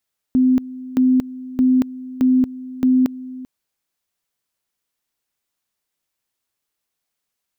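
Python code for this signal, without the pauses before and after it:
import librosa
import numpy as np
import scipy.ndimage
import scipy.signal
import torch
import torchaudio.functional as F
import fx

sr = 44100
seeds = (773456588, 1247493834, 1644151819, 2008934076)

y = fx.two_level_tone(sr, hz=256.0, level_db=-11.0, drop_db=18.0, high_s=0.23, low_s=0.39, rounds=5)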